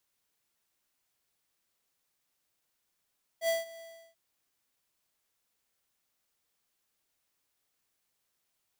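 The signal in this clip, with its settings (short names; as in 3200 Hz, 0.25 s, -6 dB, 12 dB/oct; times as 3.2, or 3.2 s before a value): ADSR square 662 Hz, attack 73 ms, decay 0.165 s, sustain -20.5 dB, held 0.40 s, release 0.339 s -27 dBFS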